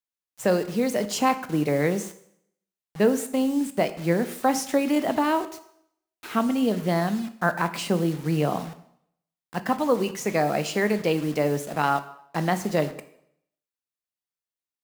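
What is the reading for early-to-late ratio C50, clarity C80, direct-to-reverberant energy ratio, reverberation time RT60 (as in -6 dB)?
13.5 dB, 16.0 dB, 10.0 dB, 0.70 s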